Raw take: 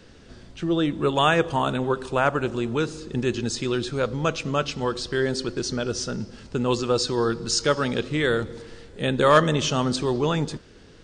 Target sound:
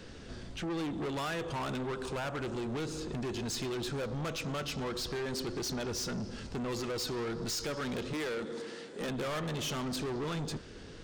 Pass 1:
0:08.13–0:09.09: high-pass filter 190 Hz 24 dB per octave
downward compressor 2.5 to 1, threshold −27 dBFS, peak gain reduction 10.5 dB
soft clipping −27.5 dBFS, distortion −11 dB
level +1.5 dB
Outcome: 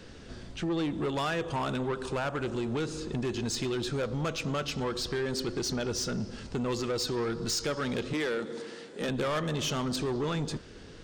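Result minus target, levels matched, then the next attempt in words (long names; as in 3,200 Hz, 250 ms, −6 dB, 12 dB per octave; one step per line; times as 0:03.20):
soft clipping: distortion −5 dB
0:08.13–0:09.09: high-pass filter 190 Hz 24 dB per octave
downward compressor 2.5 to 1, threshold −27 dBFS, peak gain reduction 10.5 dB
soft clipping −34.5 dBFS, distortion −6 dB
level +1.5 dB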